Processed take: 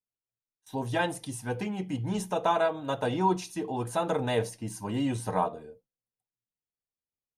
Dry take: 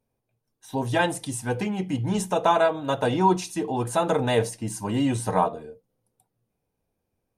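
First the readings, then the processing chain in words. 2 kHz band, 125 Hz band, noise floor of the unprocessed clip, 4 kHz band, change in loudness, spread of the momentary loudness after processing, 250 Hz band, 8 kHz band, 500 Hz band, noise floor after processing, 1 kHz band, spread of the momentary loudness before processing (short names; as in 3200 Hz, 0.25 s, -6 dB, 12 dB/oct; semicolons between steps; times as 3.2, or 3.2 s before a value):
-5.5 dB, -5.5 dB, -80 dBFS, -5.5 dB, -5.5 dB, 9 LU, -5.5 dB, -7.5 dB, -5.5 dB, under -85 dBFS, -5.5 dB, 9 LU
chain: gate with hold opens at -37 dBFS; dynamic EQ 7800 Hz, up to -6 dB, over -53 dBFS, Q 4.7; gain -5.5 dB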